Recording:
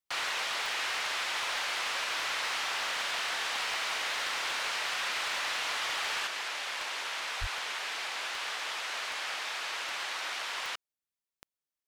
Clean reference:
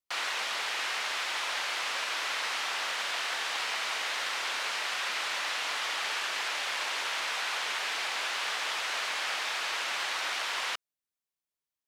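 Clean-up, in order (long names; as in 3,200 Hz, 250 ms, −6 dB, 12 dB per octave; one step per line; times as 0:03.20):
clipped peaks rebuilt −27 dBFS
click removal
high-pass at the plosives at 0:07.40
level 0 dB, from 0:06.27 +3.5 dB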